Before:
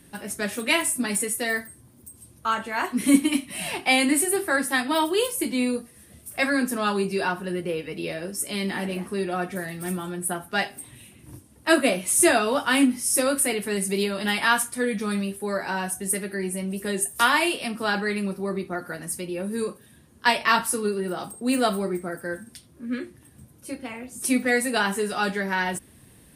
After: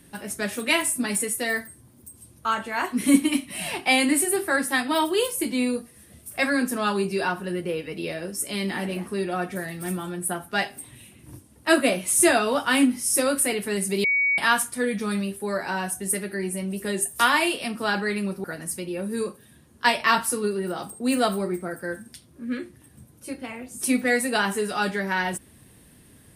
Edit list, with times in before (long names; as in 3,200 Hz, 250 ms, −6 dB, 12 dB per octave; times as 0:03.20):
0:14.04–0:14.38: beep over 2,250 Hz −18.5 dBFS
0:18.44–0:18.85: remove